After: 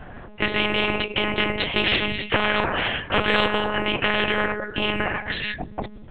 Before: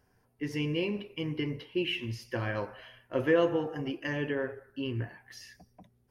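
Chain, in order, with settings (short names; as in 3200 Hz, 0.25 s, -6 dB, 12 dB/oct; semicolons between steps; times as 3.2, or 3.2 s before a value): dynamic EQ 770 Hz, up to +4 dB, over -46 dBFS, Q 1.3; monotone LPC vocoder at 8 kHz 210 Hz; spectral compressor 4:1; gain +7 dB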